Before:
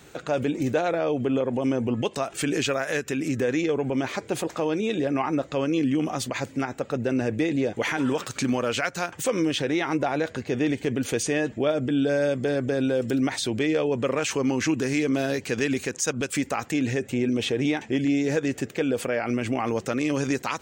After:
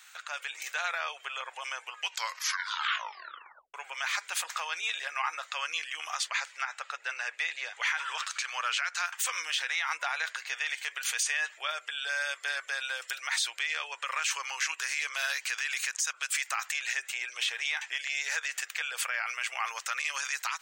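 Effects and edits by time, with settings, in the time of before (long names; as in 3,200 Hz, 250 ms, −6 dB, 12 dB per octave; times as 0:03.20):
0:01.94: tape stop 1.80 s
0:06.17–0:09.06: high-frequency loss of the air 52 metres
whole clip: inverse Chebyshev high-pass filter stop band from 260 Hz, stop band 70 dB; brickwall limiter −24.5 dBFS; automatic gain control gain up to 5 dB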